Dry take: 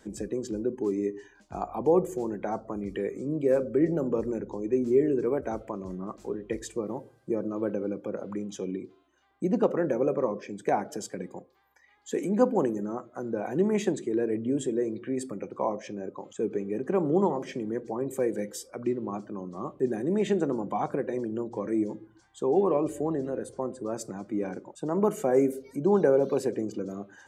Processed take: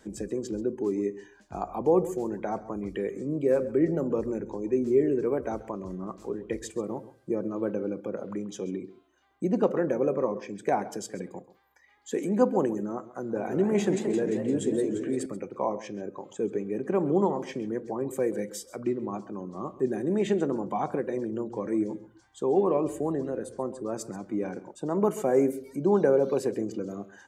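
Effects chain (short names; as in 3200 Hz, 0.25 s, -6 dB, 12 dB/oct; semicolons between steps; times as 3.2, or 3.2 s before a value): echo 0.134 s -17.5 dB; 13.18–15.26 warbling echo 0.173 s, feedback 63%, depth 217 cents, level -7 dB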